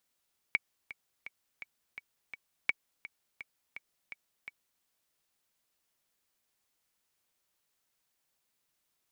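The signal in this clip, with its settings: metronome 168 bpm, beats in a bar 6, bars 2, 2.26 kHz, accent 16.5 dB -13 dBFS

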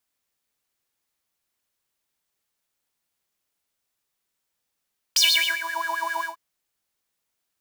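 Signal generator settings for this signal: synth patch with filter wobble E4, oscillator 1 square, oscillator 2 sine, interval +12 st, oscillator 2 level -4 dB, noise -9.5 dB, filter highpass, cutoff 1.1 kHz, Q 11, filter envelope 2 oct, filter decay 0.60 s, filter sustain 5%, attack 5.9 ms, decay 0.42 s, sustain -17 dB, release 0.13 s, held 1.07 s, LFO 7.6 Hz, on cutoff 0.5 oct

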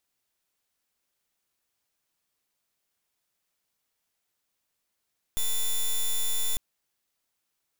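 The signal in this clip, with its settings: pulse 3.51 kHz, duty 7% -25 dBFS 1.20 s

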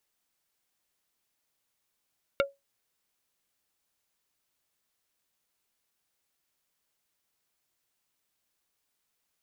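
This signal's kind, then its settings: wood hit plate, lowest mode 556 Hz, decay 0.19 s, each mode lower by 2 dB, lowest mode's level -19 dB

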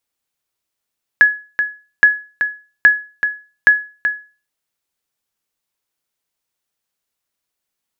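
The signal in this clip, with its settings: sonar ping 1.69 kHz, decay 0.34 s, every 0.82 s, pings 4, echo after 0.38 s, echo -8.5 dB -1 dBFS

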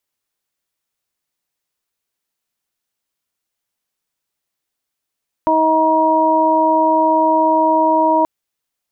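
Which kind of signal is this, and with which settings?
steady additive tone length 2.78 s, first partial 317 Hz, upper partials 2/5 dB, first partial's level -18 dB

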